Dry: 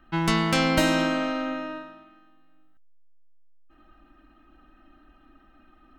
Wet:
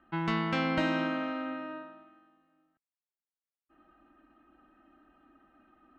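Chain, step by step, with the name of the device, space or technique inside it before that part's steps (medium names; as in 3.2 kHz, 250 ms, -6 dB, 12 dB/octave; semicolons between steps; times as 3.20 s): high-pass 220 Hz 6 dB/octave; phone in a pocket (low-pass 3.4 kHz 12 dB/octave; treble shelf 2.4 kHz -8.5 dB); dynamic bell 560 Hz, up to -5 dB, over -38 dBFS, Q 0.89; trim -2.5 dB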